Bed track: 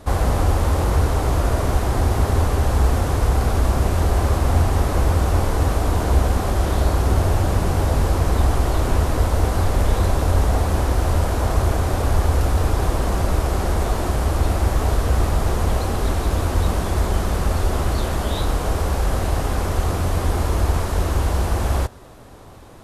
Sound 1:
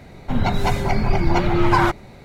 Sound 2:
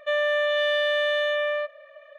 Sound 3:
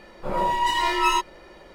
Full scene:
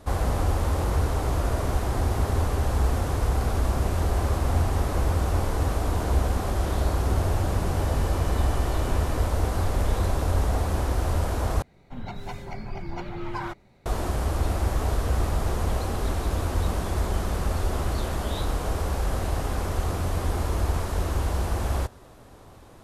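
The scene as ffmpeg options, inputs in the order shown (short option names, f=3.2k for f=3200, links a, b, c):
-filter_complex "[0:a]volume=-6dB[a];[2:a]asoftclip=type=tanh:threshold=-28.5dB[b];[a]asplit=2[c][d];[c]atrim=end=11.624[e];[1:a]atrim=end=2.24,asetpts=PTS-STARTPTS,volume=-16dB[f];[d]atrim=start=13.856[g];[b]atrim=end=2.18,asetpts=PTS-STARTPTS,volume=-16dB,afade=t=in:d=0.004:c=hsin,afade=t=out:st=2.176:d=0.004:c=hsin,adelay=7670[h];[e][f]acrossfade=d=0.004:c1=hsin:c2=hsin[i];[i][g]acrossfade=d=0.004:c1=hsin:c2=hsin[j];[j][h]amix=inputs=2:normalize=0"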